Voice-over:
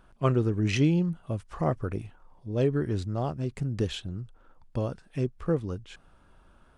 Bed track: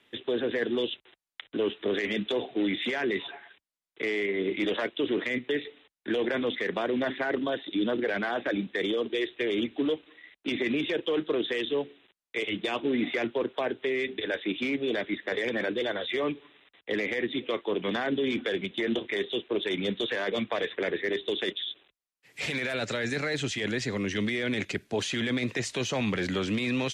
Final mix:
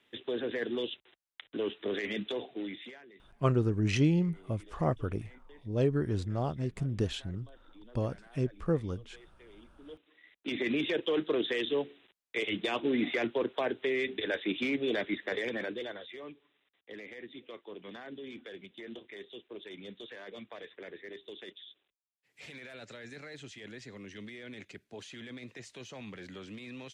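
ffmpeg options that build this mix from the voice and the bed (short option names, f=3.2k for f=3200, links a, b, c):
-filter_complex "[0:a]adelay=3200,volume=-2.5dB[a];[1:a]volume=20.5dB,afade=t=out:st=2.23:d=0.82:silence=0.0749894,afade=t=in:st=9.83:d=0.97:silence=0.0501187,afade=t=out:st=15.11:d=1.03:silence=0.188365[b];[a][b]amix=inputs=2:normalize=0"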